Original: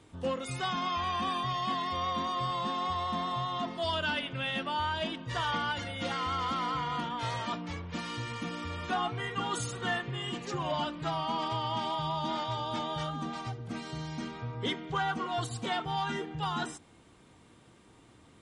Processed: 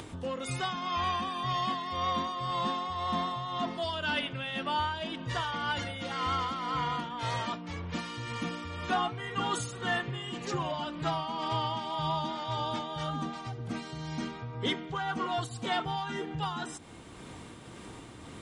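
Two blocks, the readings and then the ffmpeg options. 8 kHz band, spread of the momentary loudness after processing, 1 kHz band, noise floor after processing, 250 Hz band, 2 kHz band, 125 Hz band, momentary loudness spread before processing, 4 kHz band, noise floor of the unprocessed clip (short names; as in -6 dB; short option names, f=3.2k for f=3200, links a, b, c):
+0.5 dB, 8 LU, 0.0 dB, -47 dBFS, +0.5 dB, 0.0 dB, +0.5 dB, 6 LU, 0.0 dB, -59 dBFS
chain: -af "tremolo=f=1.9:d=0.51,acompressor=mode=upward:threshold=-37dB:ratio=2.5,volume=2.5dB"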